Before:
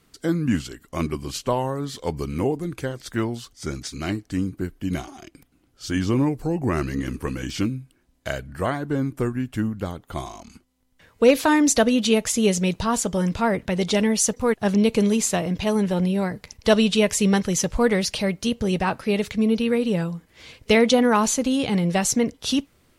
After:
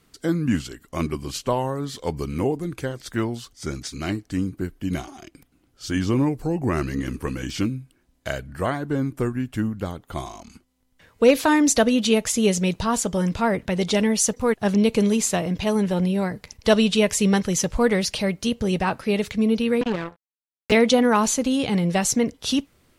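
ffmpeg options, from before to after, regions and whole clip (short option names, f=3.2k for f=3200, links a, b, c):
-filter_complex "[0:a]asettb=1/sr,asplit=3[a][b][c];[a]atrim=end=19.814[d];[b]atrim=start=19.81:end=20.72,asetpts=PTS-STARTPTS,afade=t=in:d=0.004:c=qsin,afade=t=out:st=0.906:d=0.004:c=qsin,highshelf=f=3.7k:t=q:w=1.5:g=-9.5,acrossover=split=210|3100[e][f][g];[e]acompressor=threshold=-28dB:ratio=4[h];[f]acompressor=threshold=-27dB:ratio=4[i];[g]acompressor=threshold=-59dB:ratio=4[j];[h][i][j]amix=inputs=3:normalize=0,acrusher=bits=3:mix=0:aa=0.5[k];[c]atrim=start=20.716[l];[d][k]acrossfade=d=0.004:c1=hsin:c2=qsin[m];[m][l]acrossfade=d=0.004:c1=qsin:c2=hsin"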